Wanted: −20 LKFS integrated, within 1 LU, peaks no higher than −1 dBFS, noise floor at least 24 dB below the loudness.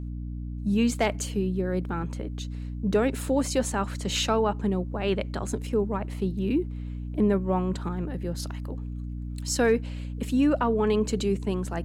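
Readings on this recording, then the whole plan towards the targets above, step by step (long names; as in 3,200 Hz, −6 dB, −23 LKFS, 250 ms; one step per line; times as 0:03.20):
mains hum 60 Hz; hum harmonics up to 300 Hz; level of the hum −31 dBFS; integrated loudness −27.5 LKFS; sample peak −11.0 dBFS; target loudness −20.0 LKFS
→ mains-hum notches 60/120/180/240/300 Hz
level +7.5 dB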